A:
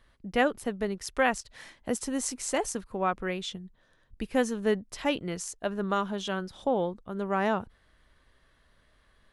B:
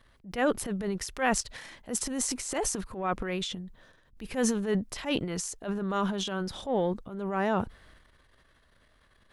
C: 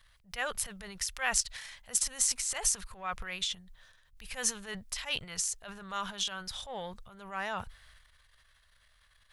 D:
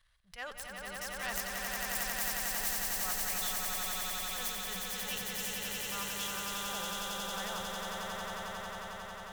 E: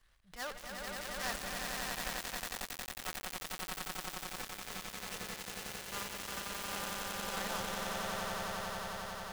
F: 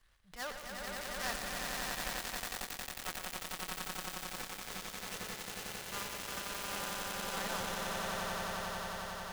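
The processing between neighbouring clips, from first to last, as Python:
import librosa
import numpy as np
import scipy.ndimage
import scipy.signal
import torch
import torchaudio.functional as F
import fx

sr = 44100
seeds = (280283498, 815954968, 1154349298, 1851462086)

y1 = fx.transient(x, sr, attack_db=-10, sustain_db=9)
y2 = fx.tone_stack(y1, sr, knobs='10-0-10')
y2 = y2 * 10.0 ** (4.0 / 20.0)
y3 = fx.self_delay(y2, sr, depth_ms=0.2)
y3 = fx.echo_swell(y3, sr, ms=90, loudest=8, wet_db=-3.5)
y3 = y3 * 10.0 ** (-8.0 / 20.0)
y4 = fx.dead_time(y3, sr, dead_ms=0.15)
y4 = y4 * 10.0 ** (3.0 / 20.0)
y5 = y4 + 10.0 ** (-9.5 / 20.0) * np.pad(y4, (int(118 * sr / 1000.0), 0))[:len(y4)]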